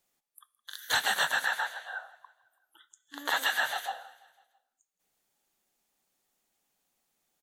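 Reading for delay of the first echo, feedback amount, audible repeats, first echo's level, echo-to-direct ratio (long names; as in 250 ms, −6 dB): 166 ms, 57%, 3, −22.0 dB, −20.5 dB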